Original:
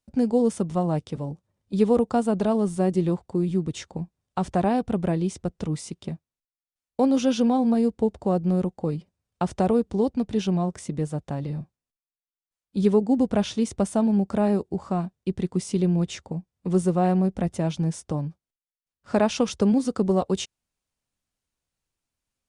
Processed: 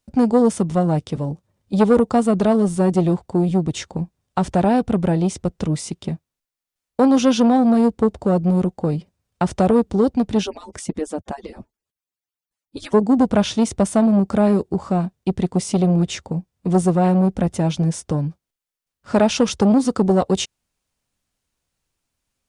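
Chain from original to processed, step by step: 10.43–12.94 s: harmonic-percussive separation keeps percussive; transformer saturation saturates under 520 Hz; trim +7.5 dB

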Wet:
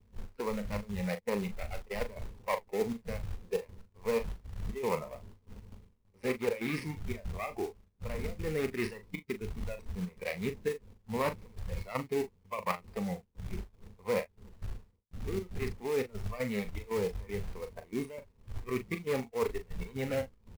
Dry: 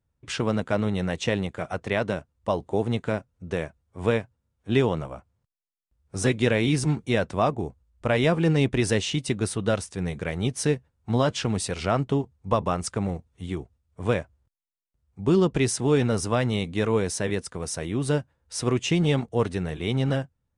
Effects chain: dead-time distortion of 0.23 ms; wind noise 90 Hz -24 dBFS; trance gate ".x.xxx.xx.xxxx" 118 bpm -12 dB; spectral noise reduction 14 dB; rippled EQ curve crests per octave 0.88, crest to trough 11 dB; reverse; compression 16:1, threshold -27 dBFS, peak gain reduction 23.5 dB; reverse; tone controls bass -8 dB, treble -14 dB; gate with hold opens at -60 dBFS; short-mantissa float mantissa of 2-bit; doubling 39 ms -10 dB; trim +1 dB

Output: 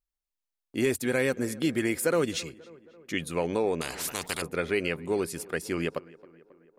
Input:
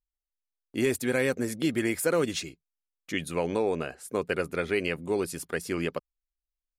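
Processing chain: on a send: tape echo 269 ms, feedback 68%, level -20 dB, low-pass 2.1 kHz; 3.81–4.42 s: on the sum: spectrum-flattening compressor 4:1

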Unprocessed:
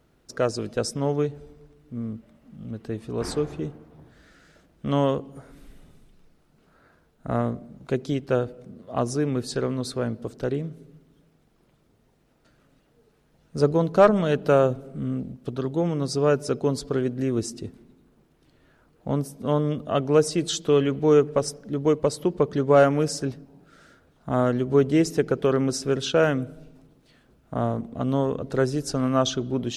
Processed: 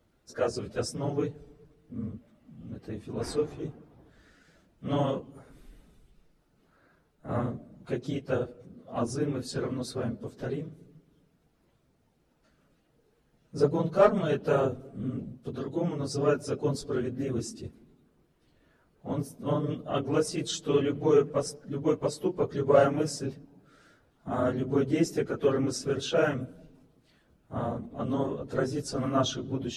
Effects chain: phase randomisation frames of 50 ms; wow and flutter 22 cents; trim -5.5 dB

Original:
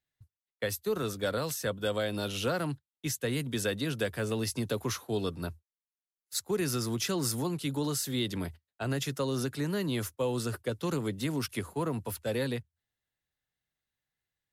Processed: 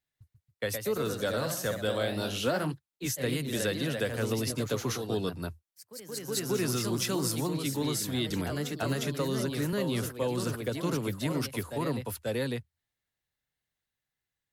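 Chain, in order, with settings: ever faster or slower copies 150 ms, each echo +1 st, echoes 3, each echo -6 dB; 8.30–9.73 s: three bands compressed up and down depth 70%

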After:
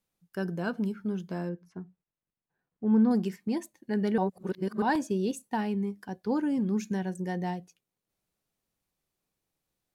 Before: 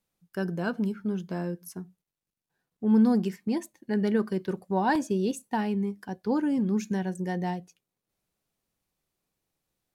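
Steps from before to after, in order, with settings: 1.49–3.11 s: low-pass 2.2 kHz 12 dB/octave; 4.18–4.82 s: reverse; trim -2 dB

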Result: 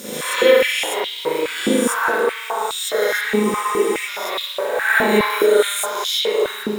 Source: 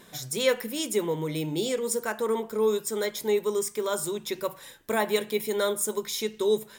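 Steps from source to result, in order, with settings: reverse spectral sustain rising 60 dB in 1.21 s; added noise pink -41 dBFS; treble shelf 5.1 kHz +7.5 dB; spring tank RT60 1.1 s, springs 38 ms, chirp 25 ms, DRR -8.5 dB; dynamic bell 1.4 kHz, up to +4 dB, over -30 dBFS, Q 0.89; spectral freeze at 3.45 s, 0.63 s; step-sequenced high-pass 4.8 Hz 230–3400 Hz; trim -6 dB

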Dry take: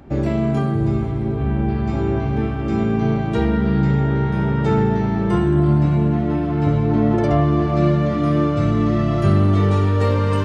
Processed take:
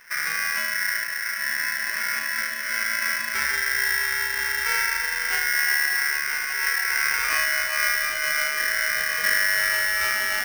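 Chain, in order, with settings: polarity switched at an audio rate 1.8 kHz; trim -7 dB

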